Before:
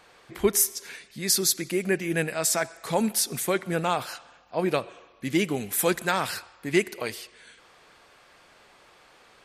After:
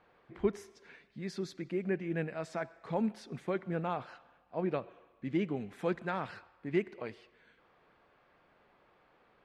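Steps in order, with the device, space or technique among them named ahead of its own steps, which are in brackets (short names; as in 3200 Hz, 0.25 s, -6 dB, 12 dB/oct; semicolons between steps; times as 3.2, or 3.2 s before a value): phone in a pocket (LPF 3200 Hz 12 dB/oct; bell 190 Hz +3 dB 1.3 oct; high shelf 2200 Hz -10 dB); gain -8.5 dB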